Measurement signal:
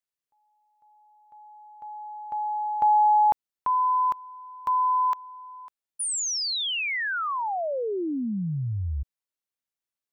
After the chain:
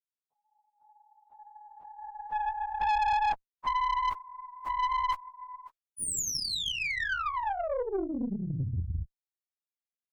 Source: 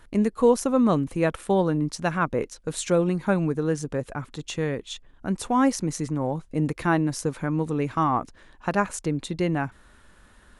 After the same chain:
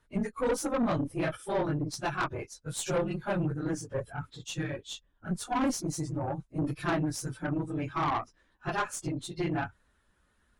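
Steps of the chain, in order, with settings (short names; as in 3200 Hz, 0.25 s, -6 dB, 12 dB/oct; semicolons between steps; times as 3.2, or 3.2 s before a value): phase scrambler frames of 50 ms; spectral noise reduction 12 dB; tube stage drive 22 dB, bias 0.5; gain -1.5 dB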